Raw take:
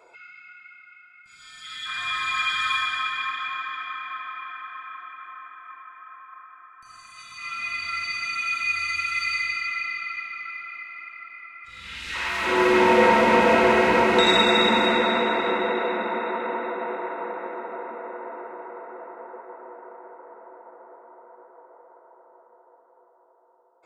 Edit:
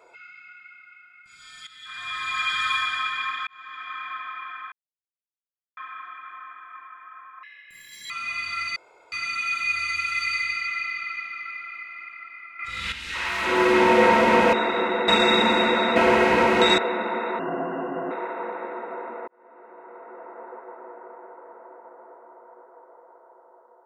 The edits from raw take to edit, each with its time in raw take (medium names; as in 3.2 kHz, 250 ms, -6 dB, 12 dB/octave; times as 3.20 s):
1.67–2.55 s: fade in, from -13.5 dB
3.47–4.01 s: fade in
4.72 s: insert silence 1.05 s
6.38–7.46 s: speed 161%
8.12 s: insert room tone 0.36 s
11.59–11.92 s: gain +10 dB
13.53–14.35 s: swap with 15.23–15.78 s
16.39–16.92 s: speed 74%
18.09–19.27 s: fade in